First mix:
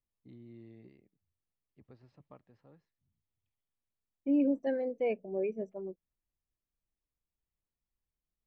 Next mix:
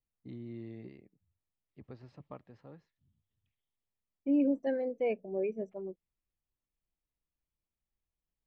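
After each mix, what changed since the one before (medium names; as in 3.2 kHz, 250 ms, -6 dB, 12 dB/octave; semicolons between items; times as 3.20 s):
first voice +8.0 dB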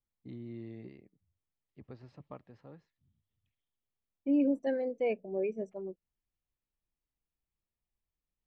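second voice: remove distance through air 120 m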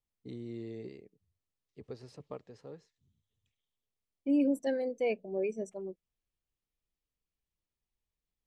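first voice: add peaking EQ 440 Hz +12 dB 0.42 oct; master: remove low-pass 2.5 kHz 12 dB/octave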